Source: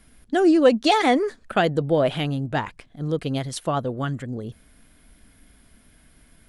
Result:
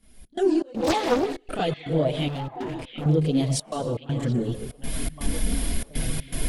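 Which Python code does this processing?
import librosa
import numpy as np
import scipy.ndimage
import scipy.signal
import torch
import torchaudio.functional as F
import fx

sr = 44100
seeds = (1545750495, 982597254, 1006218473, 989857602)

p1 = fx.recorder_agc(x, sr, target_db=-13.0, rise_db_per_s=39.0, max_gain_db=30)
p2 = fx.peak_eq(p1, sr, hz=1400.0, db=-9.0, octaves=1.2)
p3 = fx.rev_plate(p2, sr, seeds[0], rt60_s=0.92, hf_ratio=0.95, predelay_ms=105, drr_db=9.0)
p4 = 10.0 ** (-15.5 / 20.0) * np.tanh(p3 / 10.0 ** (-15.5 / 20.0))
p5 = p3 + (p4 * 10.0 ** (-4.5 / 20.0))
p6 = fx.chorus_voices(p5, sr, voices=4, hz=0.43, base_ms=29, depth_ms=4.1, mix_pct=70)
p7 = fx.step_gate(p6, sr, bpm=121, pattern='xx.xx.xxx', floor_db=-24.0, edge_ms=4.5)
p8 = fx.clip_hard(p7, sr, threshold_db=-25.5, at=(2.28, 3.06))
p9 = fx.high_shelf(p8, sr, hz=5500.0, db=-6.5, at=(3.63, 4.03))
p10 = p9 + fx.echo_stepped(p9, sr, ms=728, hz=2600.0, octaves=-1.4, feedback_pct=70, wet_db=-8, dry=0)
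p11 = fx.doppler_dist(p10, sr, depth_ms=0.64, at=(0.71, 1.38))
y = p11 * 10.0 ** (-4.5 / 20.0)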